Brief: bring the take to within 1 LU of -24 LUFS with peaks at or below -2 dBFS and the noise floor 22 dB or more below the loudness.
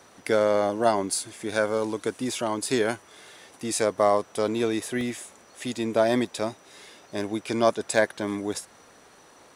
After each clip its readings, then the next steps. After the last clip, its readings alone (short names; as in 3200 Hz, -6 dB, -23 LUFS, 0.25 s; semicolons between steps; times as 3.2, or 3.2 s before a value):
dropouts 2; longest dropout 1.5 ms; loudness -26.5 LUFS; peak -6.5 dBFS; loudness target -24.0 LUFS
-> interpolate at 2.66/5.01, 1.5 ms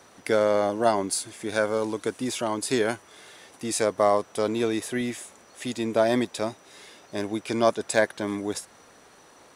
dropouts 0; loudness -26.5 LUFS; peak -6.5 dBFS; loudness target -24.0 LUFS
-> gain +2.5 dB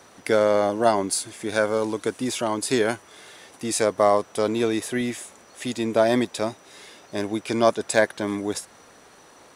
loudness -24.0 LUFS; peak -4.0 dBFS; noise floor -51 dBFS